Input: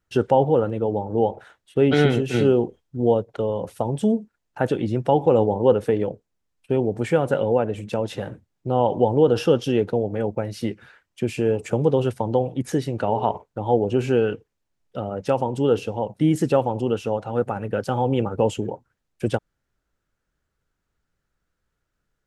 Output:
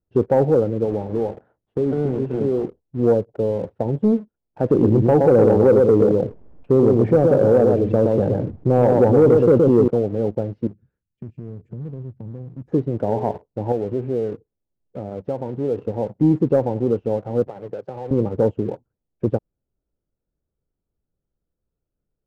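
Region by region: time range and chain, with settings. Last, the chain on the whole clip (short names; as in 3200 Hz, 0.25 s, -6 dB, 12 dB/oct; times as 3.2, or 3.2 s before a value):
0.84–2.64 block floating point 3-bit + compressor 4:1, threshold -20 dBFS + notches 60/120/180/240/300 Hz
4.7–9.88 echo 0.12 s -5 dB + fast leveller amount 50%
10.67–12.68 EQ curve 160 Hz 0 dB, 700 Hz -24 dB, 9700 Hz +1 dB + compressor 2.5:1, threshold -35 dBFS
13.72–15.78 compressor 1.5:1, threshold -33 dBFS + Doppler distortion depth 0.14 ms
17.47–18.11 HPF 140 Hz 24 dB/oct + bell 230 Hz -14 dB 0.8 oct + compressor 3:1, threshold -29 dBFS
whole clip: Chebyshev low-pass 510 Hz, order 2; sample leveller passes 1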